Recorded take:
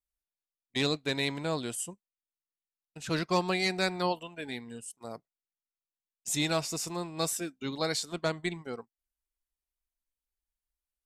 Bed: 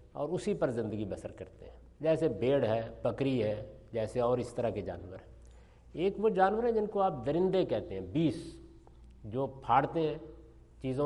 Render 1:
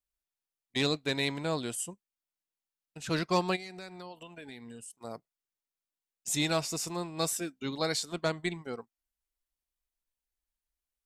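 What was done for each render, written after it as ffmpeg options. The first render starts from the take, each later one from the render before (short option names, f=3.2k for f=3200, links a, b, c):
-filter_complex "[0:a]asplit=3[a][b][c];[a]afade=t=out:st=3.55:d=0.02[d];[b]acompressor=threshold=-42dB:ratio=6:attack=3.2:release=140:knee=1:detection=peak,afade=t=in:st=3.55:d=0.02,afade=t=out:st=4.94:d=0.02[e];[c]afade=t=in:st=4.94:d=0.02[f];[d][e][f]amix=inputs=3:normalize=0"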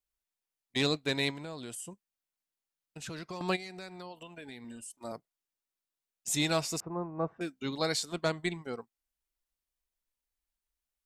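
-filter_complex "[0:a]asettb=1/sr,asplit=3[a][b][c];[a]atrim=end=1.304[d];[b]atrim=start=1.3:end=3.41,asetpts=PTS-STARTPTS,afade=t=in:d=0.004:c=qsin,afade=t=out:st=2.106:d=0.004:c=qsin,acompressor=threshold=-38dB:ratio=6:attack=3.2:release=140:knee=1:detection=peak[e];[c]atrim=start=3.406[f];[d][e]acrossfade=d=0.004:c1=hsin:c2=qsin[g];[g][f]acrossfade=d=0.004:c1=qsin:c2=hsin,asettb=1/sr,asplit=3[h][i][j];[h]atrim=end=4.644[k];[i]atrim=start=4.64:end=5.12,asetpts=PTS-STARTPTS,afade=t=in:d=0.004:c=qsin,afade=t=out:st=0.476:d=0.004:c=qsin,aecho=1:1:3.3:0.65,atrim=end_sample=21168[l];[j]atrim=start=5.116[m];[k][l]acrossfade=d=0.004:c1=hsin:c2=qsin[n];[n][m]acrossfade=d=0.004:c1=qsin:c2=hsin,asettb=1/sr,asplit=3[o][p][q];[o]atrim=end=6.804[r];[p]atrim=start=6.8:end=7.41,asetpts=PTS-STARTPTS,afade=t=in:d=0.004:c=qsin,afade=t=out:st=0.606:d=0.004:c=qsin,lowpass=f=1.3k:w=0.5412,lowpass=f=1.3k:w=1.3066[s];[q]atrim=start=7.406[t];[r][s]acrossfade=d=0.004:c1=hsin:c2=qsin[u];[u][t]acrossfade=d=0.004:c1=qsin:c2=hsin"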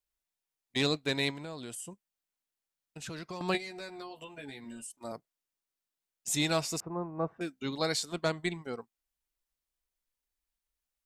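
-filter_complex "[0:a]asettb=1/sr,asplit=3[a][b][c];[a]atrim=end=3.534[d];[b]atrim=start=3.53:end=4.87,asetpts=PTS-STARTPTS,afade=t=in:d=0.004:c=qsin,afade=t=out:st=1.336:d=0.004:c=qsin,asplit=2[e][f];[f]adelay=14,volume=-3dB[g];[e][g]amix=inputs=2:normalize=0,atrim=end_sample=59094[h];[c]atrim=start=4.866[i];[d][h]acrossfade=d=0.004:c1=hsin:c2=qsin[j];[j][i]acrossfade=d=0.004:c1=qsin:c2=hsin"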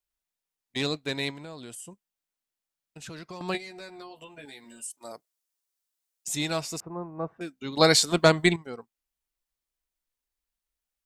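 -filter_complex "[0:a]asettb=1/sr,asplit=3[a][b][c];[a]atrim=end=4.454[d];[b]atrim=start=4.45:end=6.28,asetpts=PTS-STARTPTS,afade=t=in:d=0.004:c=qsin,afade=t=out:st=1.826:d=0.004:c=qsin,bass=f=250:g=-11,treble=f=4k:g=7[e];[c]atrim=start=6.276[f];[d][e]acrossfade=d=0.004:c1=hsin:c2=qsin[g];[g][f]acrossfade=d=0.004:c1=qsin:c2=hsin,asplit=3[h][i][j];[h]atrim=end=7.772[k];[i]atrim=start=7.768:end=8.562,asetpts=PTS-STARTPTS,volume=12dB[l];[j]atrim=start=8.558[m];[k][l]acrossfade=d=0.004:c1=hsin:c2=hsin[n];[n][m]acrossfade=d=0.004:c1=hsin:c2=hsin"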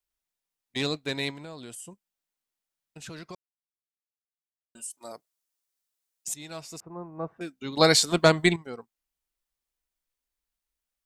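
-filter_complex "[0:a]asplit=4[a][b][c][d];[a]atrim=end=3.35,asetpts=PTS-STARTPTS,afade=t=out:st=3.346:d=0.004:c=hsin[e];[b]atrim=start=3.35:end=4.75,asetpts=PTS-STARTPTS,volume=0[f];[c]atrim=start=4.75:end=6.34,asetpts=PTS-STARTPTS,afade=t=in:d=0.004:c=hsin,afade=t=out:st=1.586:d=0.004:c=hsin:silence=0.133352[g];[d]atrim=start=6.34,asetpts=PTS-STARTPTS,afade=t=in:d=1.05:silence=0.133352[h];[e][f][g][h]concat=n=4:v=0:a=1"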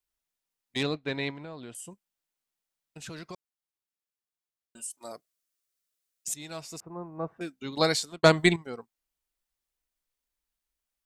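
-filter_complex "[0:a]asettb=1/sr,asplit=3[a][b][c];[a]atrim=end=0.834[d];[b]atrim=start=0.83:end=1.75,asetpts=PTS-STARTPTS,afade=t=in:d=0.004:c=qsin,afade=t=out:st=0.916:d=0.004:c=qsin,lowpass=3k[e];[c]atrim=start=1.746[f];[d][e]acrossfade=d=0.004:c1=hsin:c2=qsin[g];[g][f]acrossfade=d=0.004:c1=qsin:c2=hsin,asettb=1/sr,asplit=3[h][i][j];[h]atrim=end=5.144[k];[i]atrim=start=5.14:end=6.36,asetpts=PTS-STARTPTS,afade=t=in:d=0.004:c=qsin,afade=t=out:st=1.216:d=0.004:c=qsin,asuperstop=centerf=870:order=4:qfactor=3.1[l];[j]atrim=start=6.356[m];[k][l]acrossfade=d=0.004:c1=hsin:c2=qsin[n];[n][m]acrossfade=d=0.004:c1=qsin:c2=hsin,asplit=2[o][p];[o]atrim=end=8.23,asetpts=PTS-STARTPTS,afade=t=out:st=7.54:d=0.69[q];[p]atrim=start=8.23,asetpts=PTS-STARTPTS,afade=t=in:d=0.004:c=hsin[r];[q][r]concat=n=2:v=0:a=1"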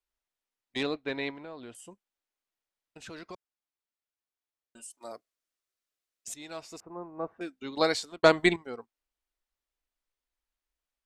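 -af "lowpass=f=3.5k:p=1,equalizer=f=150:t=o:w=0.66:g=-11.5"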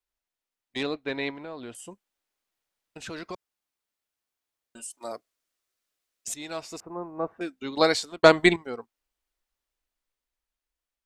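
-af "dynaudnorm=f=130:g=21:m=6.5dB"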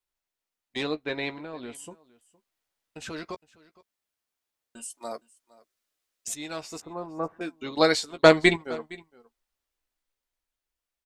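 -filter_complex "[0:a]asplit=2[a][b];[b]adelay=13,volume=-9dB[c];[a][c]amix=inputs=2:normalize=0,aecho=1:1:463:0.0794"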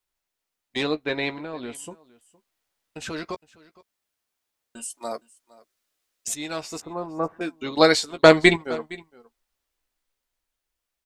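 -af "volume=4.5dB,alimiter=limit=-2dB:level=0:latency=1"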